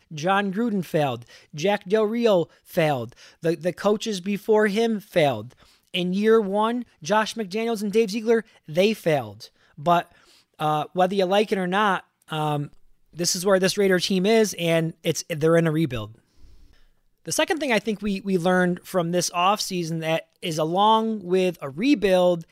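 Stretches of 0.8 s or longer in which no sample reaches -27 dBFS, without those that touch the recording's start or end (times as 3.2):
16.05–17.28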